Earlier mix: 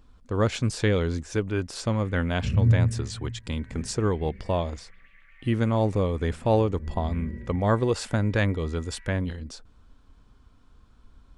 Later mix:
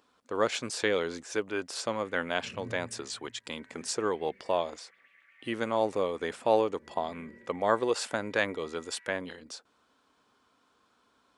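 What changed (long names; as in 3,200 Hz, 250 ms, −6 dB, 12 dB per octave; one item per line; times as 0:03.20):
first sound −3.5 dB
second sound −4.0 dB
master: add high-pass filter 420 Hz 12 dB per octave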